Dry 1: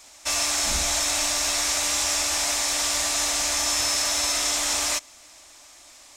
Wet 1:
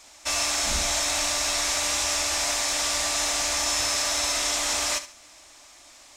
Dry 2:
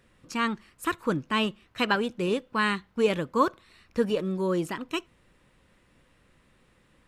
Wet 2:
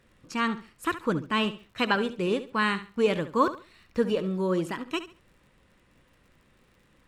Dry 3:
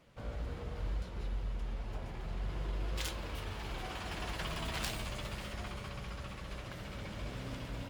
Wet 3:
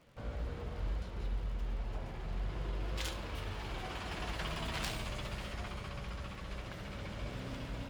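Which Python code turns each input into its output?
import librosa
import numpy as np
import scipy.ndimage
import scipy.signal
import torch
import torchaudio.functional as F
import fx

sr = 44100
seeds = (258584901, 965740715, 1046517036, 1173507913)

y = fx.high_shelf(x, sr, hz=8600.0, db=-6.0)
y = fx.dmg_crackle(y, sr, seeds[0], per_s=83.0, level_db=-53.0)
y = fx.echo_feedback(y, sr, ms=70, feedback_pct=26, wet_db=-13.0)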